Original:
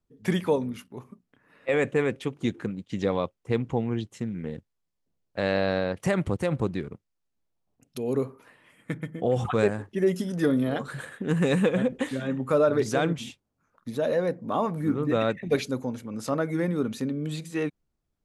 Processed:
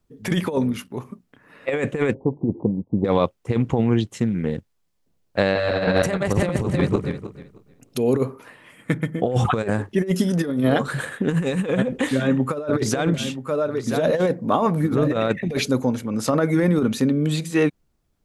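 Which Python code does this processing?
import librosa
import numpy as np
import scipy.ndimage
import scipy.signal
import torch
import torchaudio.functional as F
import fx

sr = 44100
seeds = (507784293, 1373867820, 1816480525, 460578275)

y = fx.steep_lowpass(x, sr, hz=1000.0, slope=96, at=(2.13, 3.04), fade=0.02)
y = fx.reverse_delay_fb(y, sr, ms=156, feedback_pct=43, wet_db=-1.0, at=(5.4, 8.03))
y = fx.echo_single(y, sr, ms=978, db=-11.5, at=(12.16, 15.29))
y = fx.over_compress(y, sr, threshold_db=-26.0, ratio=-0.5)
y = y * librosa.db_to_amplitude(7.5)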